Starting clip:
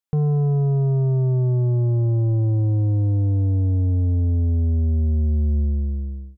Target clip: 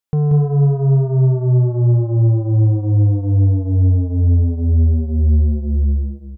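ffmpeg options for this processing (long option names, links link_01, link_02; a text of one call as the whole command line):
ffmpeg -i in.wav -af "aecho=1:1:183:0.596,volume=3.5dB" out.wav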